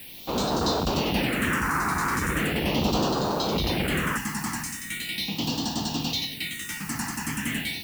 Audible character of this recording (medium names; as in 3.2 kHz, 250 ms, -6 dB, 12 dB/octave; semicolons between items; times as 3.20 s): a quantiser's noise floor 8-bit, dither triangular; phasing stages 4, 0.39 Hz, lowest notch 550–2100 Hz